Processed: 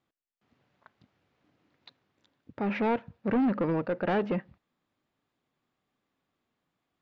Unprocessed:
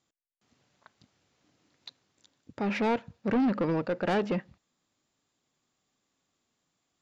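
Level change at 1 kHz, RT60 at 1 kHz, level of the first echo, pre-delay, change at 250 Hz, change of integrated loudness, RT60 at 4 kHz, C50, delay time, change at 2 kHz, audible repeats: 0.0 dB, none, none, none, 0.0 dB, 0.0 dB, none, none, none, -1.0 dB, none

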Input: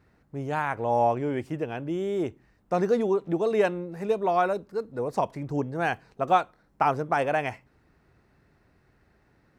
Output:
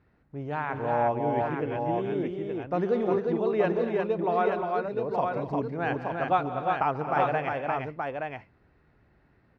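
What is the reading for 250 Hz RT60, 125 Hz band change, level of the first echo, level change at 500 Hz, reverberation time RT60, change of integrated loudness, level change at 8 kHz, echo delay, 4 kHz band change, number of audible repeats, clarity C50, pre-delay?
none, 0.0 dB, -17.0 dB, -0.5 dB, none, -1.0 dB, n/a, 0.138 s, -3.5 dB, 6, none, none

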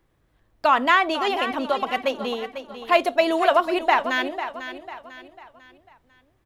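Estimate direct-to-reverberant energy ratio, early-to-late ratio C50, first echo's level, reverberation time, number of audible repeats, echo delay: none, none, -11.0 dB, none, 4, 0.497 s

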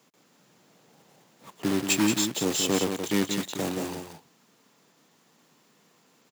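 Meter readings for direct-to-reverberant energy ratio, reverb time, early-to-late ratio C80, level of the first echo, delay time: none, none, none, -6.5 dB, 0.179 s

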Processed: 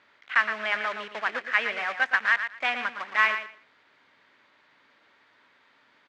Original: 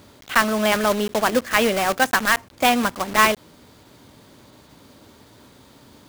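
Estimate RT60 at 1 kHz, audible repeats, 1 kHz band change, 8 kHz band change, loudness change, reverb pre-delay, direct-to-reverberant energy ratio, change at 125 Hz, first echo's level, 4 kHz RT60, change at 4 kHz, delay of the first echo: none, 2, -9.5 dB, under -25 dB, -6.0 dB, none, none, under -25 dB, -9.0 dB, none, -10.0 dB, 0.116 s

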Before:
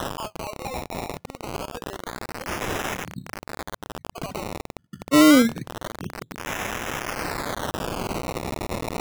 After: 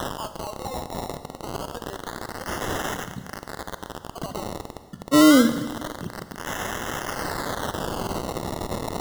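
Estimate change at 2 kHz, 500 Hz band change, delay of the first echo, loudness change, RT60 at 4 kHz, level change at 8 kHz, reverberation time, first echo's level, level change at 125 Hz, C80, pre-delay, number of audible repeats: -1.5 dB, +0.5 dB, none, 0.0 dB, 1.5 s, +0.5 dB, 1.5 s, none, +0.5 dB, 12.5 dB, 36 ms, none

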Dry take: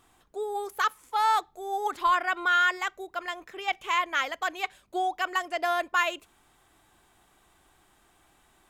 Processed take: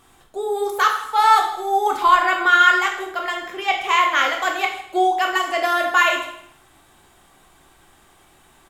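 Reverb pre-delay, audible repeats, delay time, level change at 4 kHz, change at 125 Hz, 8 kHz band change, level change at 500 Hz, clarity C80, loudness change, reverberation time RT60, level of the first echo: 6 ms, 1, 0.158 s, +9.5 dB, n/a, +9.5 dB, +10.0 dB, 8.5 dB, +10.0 dB, 0.70 s, -16.5 dB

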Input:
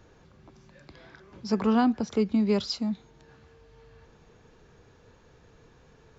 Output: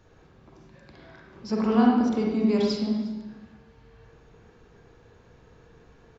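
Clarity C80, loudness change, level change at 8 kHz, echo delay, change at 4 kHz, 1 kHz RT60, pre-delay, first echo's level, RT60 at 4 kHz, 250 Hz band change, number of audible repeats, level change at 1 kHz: 3.0 dB, +2.5 dB, n/a, 0.358 s, -1.5 dB, 1.1 s, 39 ms, -20.0 dB, 1.0 s, +3.0 dB, 1, +2.0 dB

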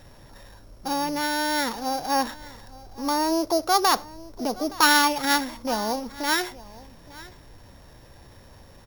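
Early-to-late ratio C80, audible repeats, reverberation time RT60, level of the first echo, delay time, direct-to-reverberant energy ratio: none, 1, none, -20.0 dB, 0.869 s, none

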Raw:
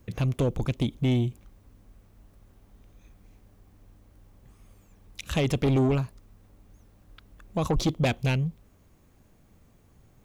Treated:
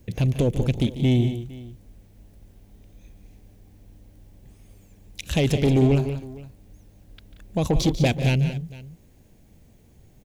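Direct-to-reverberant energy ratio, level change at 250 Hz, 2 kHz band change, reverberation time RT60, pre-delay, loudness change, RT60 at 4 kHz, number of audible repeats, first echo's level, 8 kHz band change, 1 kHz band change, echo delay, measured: none, +5.0 dB, +3.0 dB, none, none, +4.5 dB, none, 3, -14.0 dB, +5.0 dB, +1.0 dB, 0.144 s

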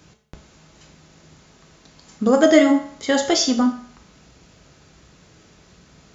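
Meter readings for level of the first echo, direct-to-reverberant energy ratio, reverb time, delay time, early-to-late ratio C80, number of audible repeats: none, 3.0 dB, 0.60 s, none, 12.5 dB, none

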